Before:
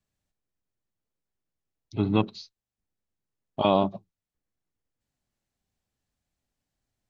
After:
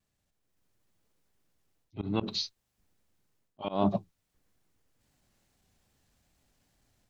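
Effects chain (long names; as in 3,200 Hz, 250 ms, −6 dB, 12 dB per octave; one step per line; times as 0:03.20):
automatic gain control gain up to 9.5 dB
transient designer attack −6 dB, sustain +1 dB
reversed playback
downward compressor 10 to 1, threshold −26 dBFS, peak gain reduction 15.5 dB
reversed playback
volume swells 125 ms
pitch vibrato 2.4 Hz 48 cents
level +3 dB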